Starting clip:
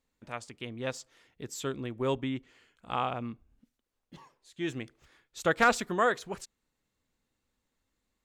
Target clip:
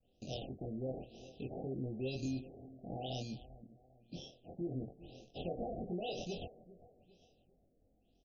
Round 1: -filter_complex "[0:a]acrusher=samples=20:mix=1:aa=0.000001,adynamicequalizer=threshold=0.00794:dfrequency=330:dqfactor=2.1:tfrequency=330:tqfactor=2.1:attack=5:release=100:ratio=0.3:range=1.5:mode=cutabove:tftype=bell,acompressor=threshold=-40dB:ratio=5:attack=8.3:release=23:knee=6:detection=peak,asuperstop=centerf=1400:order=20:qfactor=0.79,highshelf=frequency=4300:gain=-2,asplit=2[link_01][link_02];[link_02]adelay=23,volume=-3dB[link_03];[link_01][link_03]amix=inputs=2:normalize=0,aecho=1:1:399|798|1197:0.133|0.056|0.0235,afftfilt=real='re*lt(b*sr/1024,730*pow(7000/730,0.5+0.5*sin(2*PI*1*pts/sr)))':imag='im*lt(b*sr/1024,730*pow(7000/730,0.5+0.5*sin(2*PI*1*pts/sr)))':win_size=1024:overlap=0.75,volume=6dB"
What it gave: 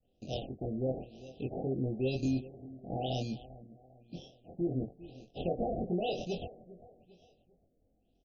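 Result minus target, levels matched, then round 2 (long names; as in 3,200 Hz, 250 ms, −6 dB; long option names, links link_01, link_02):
downward compressor: peak gain reduction −7.5 dB; 8,000 Hz band −7.0 dB
-filter_complex "[0:a]acrusher=samples=20:mix=1:aa=0.000001,adynamicequalizer=threshold=0.00794:dfrequency=330:dqfactor=2.1:tfrequency=330:tqfactor=2.1:attack=5:release=100:ratio=0.3:range=1.5:mode=cutabove:tftype=bell,acompressor=threshold=-49.5dB:ratio=5:attack=8.3:release=23:knee=6:detection=peak,asuperstop=centerf=1400:order=20:qfactor=0.79,highshelf=frequency=4300:gain=7,asplit=2[link_01][link_02];[link_02]adelay=23,volume=-3dB[link_03];[link_01][link_03]amix=inputs=2:normalize=0,aecho=1:1:399|798|1197:0.133|0.056|0.0235,afftfilt=real='re*lt(b*sr/1024,730*pow(7000/730,0.5+0.5*sin(2*PI*1*pts/sr)))':imag='im*lt(b*sr/1024,730*pow(7000/730,0.5+0.5*sin(2*PI*1*pts/sr)))':win_size=1024:overlap=0.75,volume=6dB"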